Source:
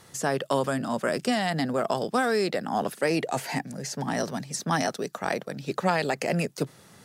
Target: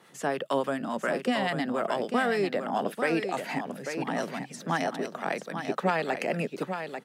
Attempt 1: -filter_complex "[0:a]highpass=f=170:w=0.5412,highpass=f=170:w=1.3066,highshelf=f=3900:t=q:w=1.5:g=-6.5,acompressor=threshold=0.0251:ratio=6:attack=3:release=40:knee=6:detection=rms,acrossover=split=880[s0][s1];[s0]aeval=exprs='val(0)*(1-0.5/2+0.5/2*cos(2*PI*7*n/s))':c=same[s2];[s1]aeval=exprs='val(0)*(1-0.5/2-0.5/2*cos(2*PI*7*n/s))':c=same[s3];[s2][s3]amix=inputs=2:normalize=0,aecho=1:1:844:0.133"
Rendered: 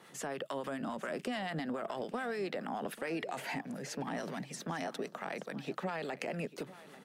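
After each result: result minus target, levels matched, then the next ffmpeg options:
compression: peak gain reduction +14 dB; echo-to-direct -10 dB
-filter_complex "[0:a]highpass=f=170:w=0.5412,highpass=f=170:w=1.3066,highshelf=f=3900:t=q:w=1.5:g=-6.5,acrossover=split=880[s0][s1];[s0]aeval=exprs='val(0)*(1-0.5/2+0.5/2*cos(2*PI*7*n/s))':c=same[s2];[s1]aeval=exprs='val(0)*(1-0.5/2-0.5/2*cos(2*PI*7*n/s))':c=same[s3];[s2][s3]amix=inputs=2:normalize=0,aecho=1:1:844:0.133"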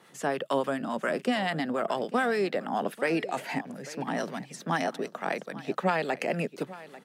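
echo-to-direct -10 dB
-filter_complex "[0:a]highpass=f=170:w=0.5412,highpass=f=170:w=1.3066,highshelf=f=3900:t=q:w=1.5:g=-6.5,acrossover=split=880[s0][s1];[s0]aeval=exprs='val(0)*(1-0.5/2+0.5/2*cos(2*PI*7*n/s))':c=same[s2];[s1]aeval=exprs='val(0)*(1-0.5/2-0.5/2*cos(2*PI*7*n/s))':c=same[s3];[s2][s3]amix=inputs=2:normalize=0,aecho=1:1:844:0.422"

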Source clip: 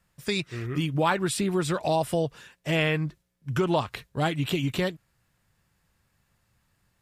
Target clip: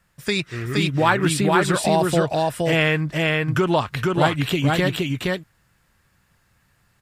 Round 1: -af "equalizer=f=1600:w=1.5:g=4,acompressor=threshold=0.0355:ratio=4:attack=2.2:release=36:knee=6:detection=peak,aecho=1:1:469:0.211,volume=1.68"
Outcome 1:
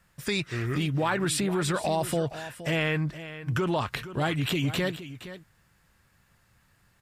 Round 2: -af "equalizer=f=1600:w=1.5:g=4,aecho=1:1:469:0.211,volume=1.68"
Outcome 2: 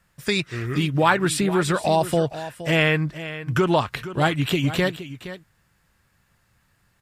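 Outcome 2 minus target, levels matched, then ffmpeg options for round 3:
echo-to-direct -11.5 dB
-af "equalizer=f=1600:w=1.5:g=4,aecho=1:1:469:0.794,volume=1.68"

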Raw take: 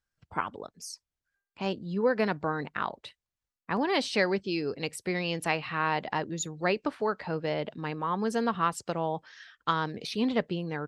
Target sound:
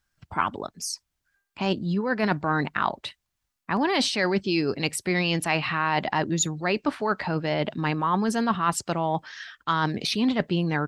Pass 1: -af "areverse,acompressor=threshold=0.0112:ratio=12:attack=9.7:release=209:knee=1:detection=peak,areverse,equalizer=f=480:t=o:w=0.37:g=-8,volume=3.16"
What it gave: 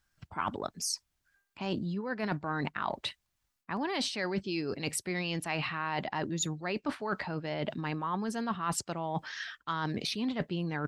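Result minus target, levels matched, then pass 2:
compression: peak gain reduction +9.5 dB
-af "areverse,acompressor=threshold=0.0376:ratio=12:attack=9.7:release=209:knee=1:detection=peak,areverse,equalizer=f=480:t=o:w=0.37:g=-8,volume=3.16"

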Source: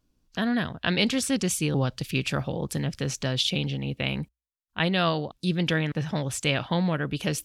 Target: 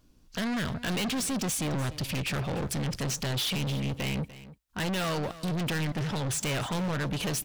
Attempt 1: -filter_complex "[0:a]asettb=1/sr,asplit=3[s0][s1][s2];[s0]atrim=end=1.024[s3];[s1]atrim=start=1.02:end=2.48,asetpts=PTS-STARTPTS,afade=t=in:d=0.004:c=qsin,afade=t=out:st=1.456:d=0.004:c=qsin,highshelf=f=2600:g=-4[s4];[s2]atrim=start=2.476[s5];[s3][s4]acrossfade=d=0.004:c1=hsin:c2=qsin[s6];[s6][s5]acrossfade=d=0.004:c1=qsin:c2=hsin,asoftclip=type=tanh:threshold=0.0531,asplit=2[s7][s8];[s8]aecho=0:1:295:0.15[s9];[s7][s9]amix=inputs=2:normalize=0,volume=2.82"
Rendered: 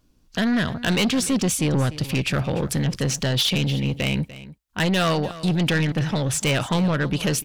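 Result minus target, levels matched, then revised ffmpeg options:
saturation: distortion -6 dB
-filter_complex "[0:a]asettb=1/sr,asplit=3[s0][s1][s2];[s0]atrim=end=1.024[s3];[s1]atrim=start=1.02:end=2.48,asetpts=PTS-STARTPTS,afade=t=in:d=0.004:c=qsin,afade=t=out:st=1.456:d=0.004:c=qsin,highshelf=f=2600:g=-4[s4];[s2]atrim=start=2.476[s5];[s3][s4]acrossfade=d=0.004:c1=hsin:c2=qsin[s6];[s6][s5]acrossfade=d=0.004:c1=qsin:c2=hsin,asoftclip=type=tanh:threshold=0.0133,asplit=2[s7][s8];[s8]aecho=0:1:295:0.15[s9];[s7][s9]amix=inputs=2:normalize=0,volume=2.82"

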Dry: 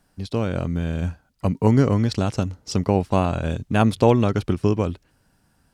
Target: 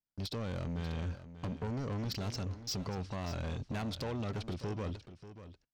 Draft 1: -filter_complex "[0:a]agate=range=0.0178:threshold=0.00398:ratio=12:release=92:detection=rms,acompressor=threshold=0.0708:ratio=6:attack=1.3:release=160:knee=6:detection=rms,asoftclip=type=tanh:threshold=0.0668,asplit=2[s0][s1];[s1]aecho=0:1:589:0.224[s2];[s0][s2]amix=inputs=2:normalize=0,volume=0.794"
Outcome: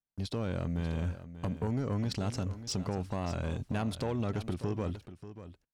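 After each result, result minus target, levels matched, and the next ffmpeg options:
saturation: distortion -8 dB; 4 kHz band -4.5 dB
-filter_complex "[0:a]agate=range=0.0178:threshold=0.00398:ratio=12:release=92:detection=rms,acompressor=threshold=0.0708:ratio=6:attack=1.3:release=160:knee=6:detection=rms,asoftclip=type=tanh:threshold=0.0266,asplit=2[s0][s1];[s1]aecho=0:1:589:0.224[s2];[s0][s2]amix=inputs=2:normalize=0,volume=0.794"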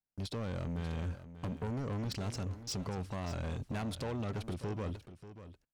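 4 kHz band -2.5 dB
-filter_complex "[0:a]agate=range=0.0178:threshold=0.00398:ratio=12:release=92:detection=rms,acompressor=threshold=0.0708:ratio=6:attack=1.3:release=160:knee=6:detection=rms,lowpass=f=5200:t=q:w=1.9,asoftclip=type=tanh:threshold=0.0266,asplit=2[s0][s1];[s1]aecho=0:1:589:0.224[s2];[s0][s2]amix=inputs=2:normalize=0,volume=0.794"

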